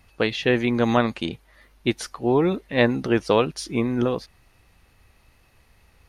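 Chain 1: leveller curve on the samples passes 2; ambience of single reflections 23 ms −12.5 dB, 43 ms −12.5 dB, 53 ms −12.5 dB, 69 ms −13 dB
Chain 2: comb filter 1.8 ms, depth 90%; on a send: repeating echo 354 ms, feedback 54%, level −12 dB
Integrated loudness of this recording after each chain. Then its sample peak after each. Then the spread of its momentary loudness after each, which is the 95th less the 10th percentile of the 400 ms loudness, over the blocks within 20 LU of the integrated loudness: −16.5, −21.0 LKFS; −2.5, −3.0 dBFS; 9, 16 LU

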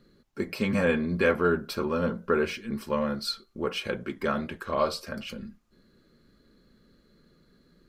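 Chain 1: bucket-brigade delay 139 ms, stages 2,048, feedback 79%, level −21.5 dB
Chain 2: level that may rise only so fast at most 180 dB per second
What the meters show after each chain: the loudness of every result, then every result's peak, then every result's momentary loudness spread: −28.5, −30.0 LKFS; −10.5, −10.5 dBFS; 12, 13 LU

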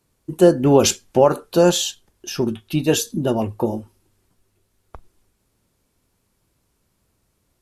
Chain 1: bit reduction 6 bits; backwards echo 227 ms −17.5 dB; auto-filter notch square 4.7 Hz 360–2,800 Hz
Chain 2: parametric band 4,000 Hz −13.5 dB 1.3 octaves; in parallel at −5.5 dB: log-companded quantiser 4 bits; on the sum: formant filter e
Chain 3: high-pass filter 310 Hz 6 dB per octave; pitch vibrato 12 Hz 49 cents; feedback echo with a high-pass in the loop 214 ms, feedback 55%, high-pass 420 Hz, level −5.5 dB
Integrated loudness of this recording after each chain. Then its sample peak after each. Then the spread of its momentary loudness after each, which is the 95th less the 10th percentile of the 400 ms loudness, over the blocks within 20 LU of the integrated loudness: −20.0, −20.5, −20.0 LKFS; −2.0, −3.5, −3.0 dBFS; 11, 19, 10 LU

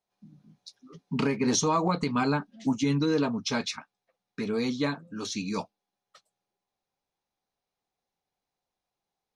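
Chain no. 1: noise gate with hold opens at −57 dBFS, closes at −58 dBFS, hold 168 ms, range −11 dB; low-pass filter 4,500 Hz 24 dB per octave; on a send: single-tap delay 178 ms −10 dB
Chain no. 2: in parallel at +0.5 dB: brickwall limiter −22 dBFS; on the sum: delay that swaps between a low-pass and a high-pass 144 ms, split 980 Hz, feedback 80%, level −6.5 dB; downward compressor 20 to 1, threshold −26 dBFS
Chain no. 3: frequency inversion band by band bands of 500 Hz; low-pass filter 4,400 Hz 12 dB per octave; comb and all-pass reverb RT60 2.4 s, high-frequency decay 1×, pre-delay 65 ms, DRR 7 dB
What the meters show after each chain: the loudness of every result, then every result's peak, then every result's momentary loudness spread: −28.5, −31.5, −28.5 LKFS; −14.5, −17.0, −13.0 dBFS; 12, 17, 15 LU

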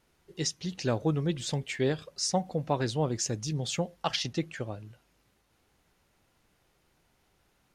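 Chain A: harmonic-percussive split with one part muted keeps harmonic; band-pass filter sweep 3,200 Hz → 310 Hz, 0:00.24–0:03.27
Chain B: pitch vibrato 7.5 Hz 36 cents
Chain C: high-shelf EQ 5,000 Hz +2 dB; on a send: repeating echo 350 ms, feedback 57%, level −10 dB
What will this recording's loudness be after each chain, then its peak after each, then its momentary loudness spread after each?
−47.0, −31.5, −30.5 LKFS; −26.0, −12.0, −12.0 dBFS; 19, 7, 17 LU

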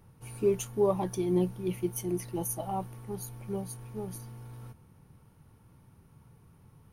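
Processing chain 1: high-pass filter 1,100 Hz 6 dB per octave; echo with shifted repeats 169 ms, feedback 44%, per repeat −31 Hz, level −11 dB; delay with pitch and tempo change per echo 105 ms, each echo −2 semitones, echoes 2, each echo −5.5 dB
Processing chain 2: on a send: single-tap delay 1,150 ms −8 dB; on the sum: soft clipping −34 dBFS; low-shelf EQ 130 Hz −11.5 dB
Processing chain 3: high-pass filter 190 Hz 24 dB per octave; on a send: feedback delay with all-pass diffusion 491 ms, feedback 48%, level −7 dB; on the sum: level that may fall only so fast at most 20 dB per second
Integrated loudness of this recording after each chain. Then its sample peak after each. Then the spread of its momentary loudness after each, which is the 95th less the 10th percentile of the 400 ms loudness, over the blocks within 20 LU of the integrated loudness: −38.0, −41.5, −28.5 LKFS; −22.0, −30.5, −13.0 dBFS; 21, 15, 16 LU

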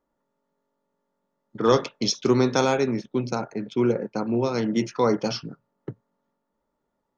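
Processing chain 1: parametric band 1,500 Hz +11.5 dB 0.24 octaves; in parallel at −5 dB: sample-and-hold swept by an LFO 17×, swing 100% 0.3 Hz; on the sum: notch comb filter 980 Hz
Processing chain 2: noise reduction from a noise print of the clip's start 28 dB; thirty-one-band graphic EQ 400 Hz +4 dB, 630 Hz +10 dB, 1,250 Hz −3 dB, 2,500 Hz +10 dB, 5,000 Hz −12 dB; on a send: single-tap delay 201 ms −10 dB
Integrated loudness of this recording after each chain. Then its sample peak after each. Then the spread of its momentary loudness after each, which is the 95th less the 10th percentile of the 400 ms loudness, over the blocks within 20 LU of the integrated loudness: −20.5, −21.5 LKFS; −2.5, −3.0 dBFS; 18, 16 LU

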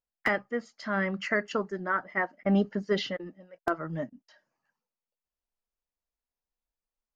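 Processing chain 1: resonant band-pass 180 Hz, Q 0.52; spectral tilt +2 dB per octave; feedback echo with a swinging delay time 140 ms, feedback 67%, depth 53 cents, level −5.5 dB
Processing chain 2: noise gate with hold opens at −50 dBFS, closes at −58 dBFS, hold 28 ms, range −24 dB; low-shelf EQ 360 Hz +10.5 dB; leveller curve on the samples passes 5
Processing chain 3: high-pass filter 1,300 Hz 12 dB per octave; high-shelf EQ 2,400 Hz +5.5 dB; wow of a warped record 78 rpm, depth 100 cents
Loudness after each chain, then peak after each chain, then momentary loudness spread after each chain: −35.5, −16.0, −33.5 LKFS; −17.5, −9.5, −13.5 dBFS; 13, 6, 15 LU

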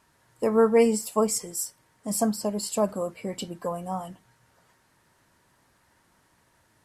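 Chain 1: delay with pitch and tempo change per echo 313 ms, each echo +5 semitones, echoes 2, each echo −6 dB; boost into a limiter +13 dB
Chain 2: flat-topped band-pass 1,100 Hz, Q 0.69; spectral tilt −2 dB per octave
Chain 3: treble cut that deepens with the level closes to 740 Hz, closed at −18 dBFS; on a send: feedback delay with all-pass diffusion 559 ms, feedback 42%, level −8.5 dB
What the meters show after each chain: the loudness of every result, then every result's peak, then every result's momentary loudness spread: −14.5, −30.5, −27.0 LKFS; −1.0, −13.0, −11.0 dBFS; 11, 18, 18 LU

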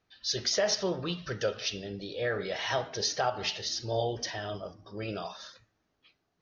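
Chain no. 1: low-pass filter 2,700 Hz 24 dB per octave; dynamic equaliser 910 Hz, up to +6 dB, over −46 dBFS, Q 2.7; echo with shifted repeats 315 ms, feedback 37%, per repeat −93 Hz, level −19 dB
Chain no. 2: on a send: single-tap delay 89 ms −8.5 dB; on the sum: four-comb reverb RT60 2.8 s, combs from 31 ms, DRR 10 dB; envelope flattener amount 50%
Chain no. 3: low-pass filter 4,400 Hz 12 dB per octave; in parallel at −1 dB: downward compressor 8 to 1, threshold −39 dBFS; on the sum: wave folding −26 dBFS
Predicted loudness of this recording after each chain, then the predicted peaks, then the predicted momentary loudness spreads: −33.5, −28.0, −33.0 LKFS; −14.5, −14.0, −26.0 dBFS; 11, 10, 6 LU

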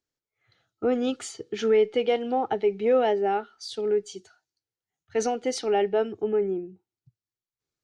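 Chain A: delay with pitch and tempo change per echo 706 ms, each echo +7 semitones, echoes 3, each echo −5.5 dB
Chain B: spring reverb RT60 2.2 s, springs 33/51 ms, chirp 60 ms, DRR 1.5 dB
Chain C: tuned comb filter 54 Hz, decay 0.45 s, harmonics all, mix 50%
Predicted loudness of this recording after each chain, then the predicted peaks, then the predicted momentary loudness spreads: −25.5, −24.0, −29.5 LKFS; −10.5, −8.5, −14.0 dBFS; 10, 14, 12 LU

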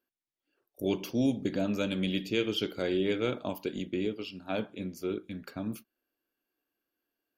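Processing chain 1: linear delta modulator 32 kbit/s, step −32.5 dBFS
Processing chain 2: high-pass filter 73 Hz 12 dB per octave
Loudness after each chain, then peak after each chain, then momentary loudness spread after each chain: −33.0, −32.5 LKFS; −17.0, −16.5 dBFS; 8, 9 LU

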